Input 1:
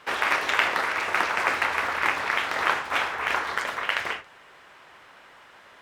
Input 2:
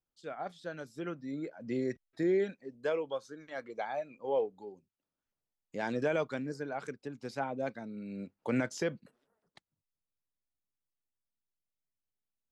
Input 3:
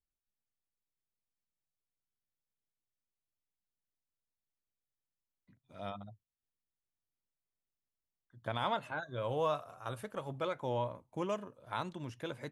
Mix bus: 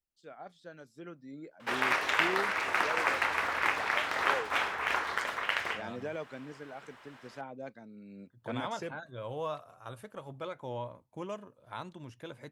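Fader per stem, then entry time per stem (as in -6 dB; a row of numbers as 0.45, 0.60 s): -5.0, -7.5, -3.5 dB; 1.60, 0.00, 0.00 s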